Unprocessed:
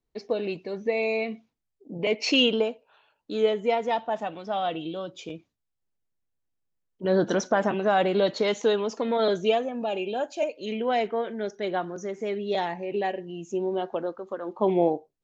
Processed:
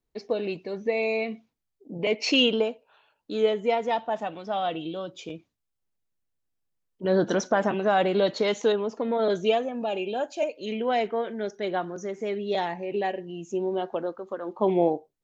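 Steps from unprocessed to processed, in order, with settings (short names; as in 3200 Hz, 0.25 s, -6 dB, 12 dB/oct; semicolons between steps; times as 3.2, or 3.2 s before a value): 8.72–9.3 high shelf 2100 Hz -11.5 dB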